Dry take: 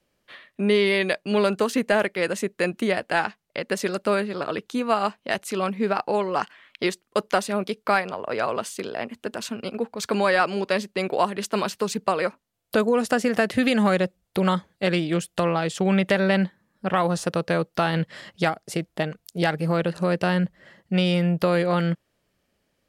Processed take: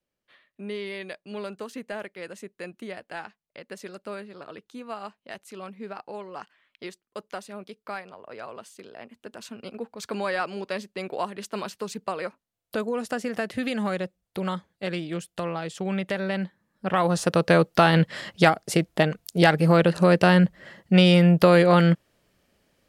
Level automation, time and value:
0:08.87 −14 dB
0:09.69 −7.5 dB
0:16.37 −7.5 dB
0:17.51 +5 dB

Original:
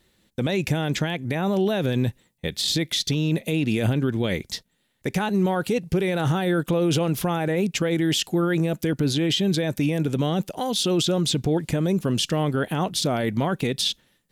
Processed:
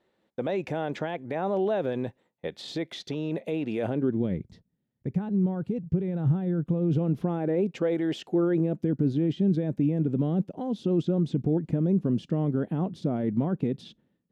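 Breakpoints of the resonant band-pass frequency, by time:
resonant band-pass, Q 1
0:03.84 640 Hz
0:04.42 130 Hz
0:06.69 130 Hz
0:08.02 630 Hz
0:08.89 220 Hz

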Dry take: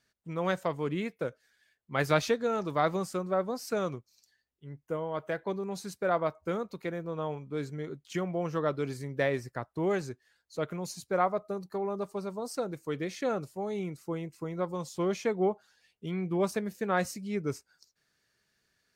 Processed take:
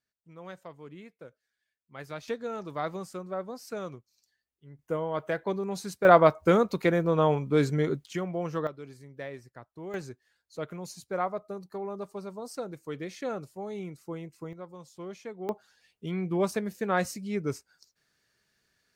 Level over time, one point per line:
−14 dB
from 0:02.28 −5.5 dB
from 0:04.79 +3 dB
from 0:06.05 +11 dB
from 0:08.06 0 dB
from 0:08.67 −11 dB
from 0:09.94 −3 dB
from 0:14.53 −11 dB
from 0:15.49 +1.5 dB

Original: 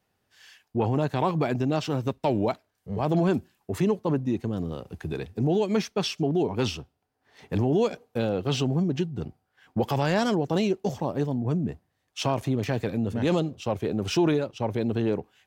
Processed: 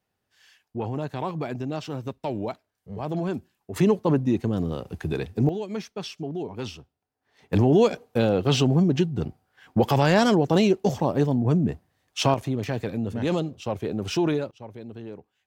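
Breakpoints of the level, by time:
−5 dB
from 0:03.76 +4 dB
from 0:05.49 −7 dB
from 0:07.53 +5 dB
from 0:12.34 −1 dB
from 0:14.51 −13 dB

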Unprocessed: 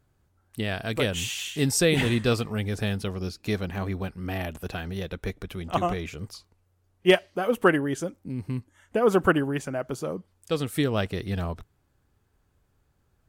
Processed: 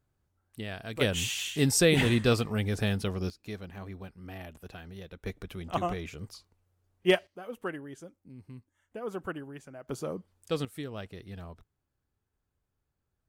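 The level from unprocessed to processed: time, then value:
−9 dB
from 0:01.01 −1 dB
from 0:03.30 −12 dB
from 0:05.26 −5 dB
from 0:07.27 −16 dB
from 0:09.88 −4 dB
from 0:10.65 −14 dB

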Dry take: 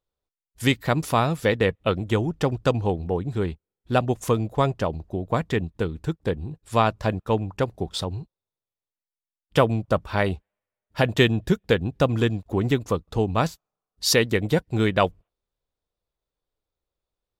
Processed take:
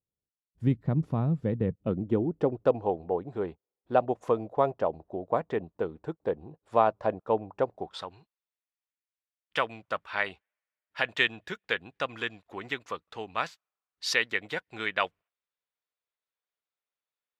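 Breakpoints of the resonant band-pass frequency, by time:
resonant band-pass, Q 1.2
0:01.66 160 Hz
0:02.85 650 Hz
0:07.71 650 Hz
0:08.18 2,000 Hz

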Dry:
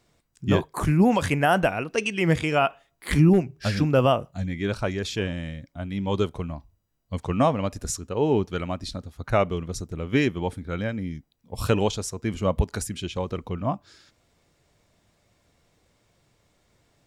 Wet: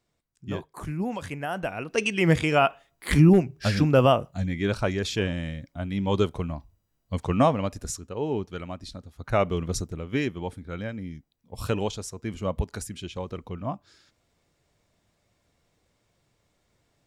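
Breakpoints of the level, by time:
0:01.55 −11 dB
0:02.02 +1 dB
0:07.38 +1 dB
0:08.25 −6.5 dB
0:09.04 −6.5 dB
0:09.76 +4 dB
0:10.06 −5 dB

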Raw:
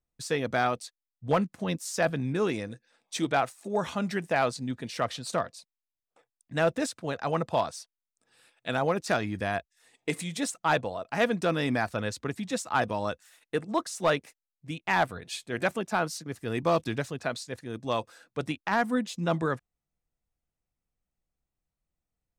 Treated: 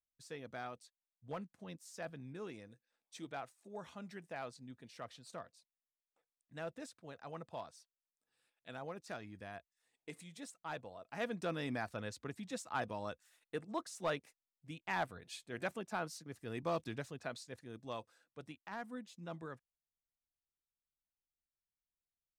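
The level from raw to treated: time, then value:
0:10.74 −19 dB
0:11.43 −12 dB
0:17.61 −12 dB
0:18.39 −19 dB

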